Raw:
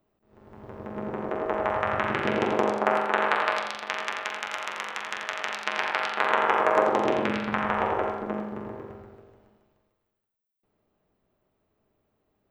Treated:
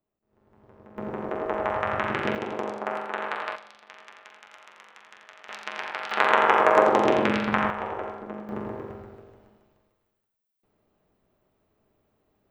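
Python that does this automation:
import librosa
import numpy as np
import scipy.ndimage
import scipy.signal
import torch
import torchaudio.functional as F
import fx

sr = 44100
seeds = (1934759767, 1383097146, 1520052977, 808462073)

y = fx.gain(x, sr, db=fx.steps((0.0, -12.0), (0.98, -0.5), (2.35, -7.0), (3.56, -17.0), (5.49, -6.0), (6.11, 3.5), (7.7, -6.0), (8.49, 3.0)))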